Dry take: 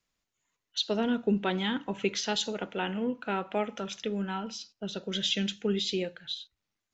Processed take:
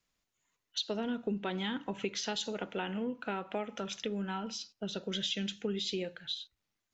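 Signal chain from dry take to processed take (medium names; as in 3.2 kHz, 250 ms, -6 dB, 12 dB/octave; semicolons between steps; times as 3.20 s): compression 3:1, threshold -33 dBFS, peak gain reduction 8.5 dB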